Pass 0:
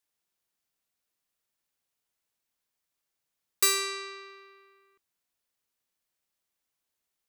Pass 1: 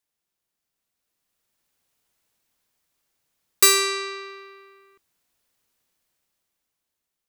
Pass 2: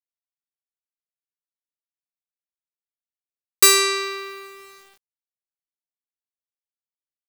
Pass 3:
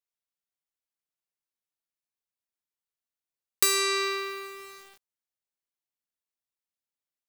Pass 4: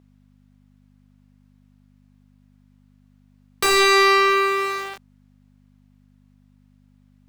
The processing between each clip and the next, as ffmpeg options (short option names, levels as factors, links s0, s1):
-af "lowshelf=f=450:g=3.5,dynaudnorm=f=320:g=9:m=3.55"
-filter_complex "[0:a]asplit=2[s0][s1];[s1]asoftclip=type=tanh:threshold=0.168,volume=0.562[s2];[s0][s2]amix=inputs=2:normalize=0,acrusher=bits=7:mix=0:aa=0.000001"
-af "acompressor=threshold=0.0794:ratio=4"
-filter_complex "[0:a]aeval=exprs='val(0)+0.000501*(sin(2*PI*50*n/s)+sin(2*PI*2*50*n/s)/2+sin(2*PI*3*50*n/s)/3+sin(2*PI*4*50*n/s)/4+sin(2*PI*5*50*n/s)/5)':c=same,asplit=2[s0][s1];[s1]highpass=f=720:p=1,volume=28.2,asoftclip=type=tanh:threshold=0.473[s2];[s0][s2]amix=inputs=2:normalize=0,lowpass=f=1000:p=1,volume=0.501,volume=1.88"